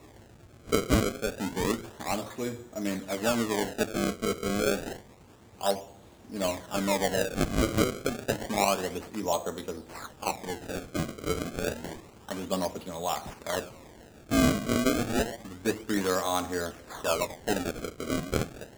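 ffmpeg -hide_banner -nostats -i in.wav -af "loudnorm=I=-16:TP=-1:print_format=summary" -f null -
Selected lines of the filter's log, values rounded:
Input Integrated:    -30.4 LUFS
Input True Peak:      -9.4 dBTP
Input LRA:             5.0 LU
Input Threshold:     -40.8 LUFS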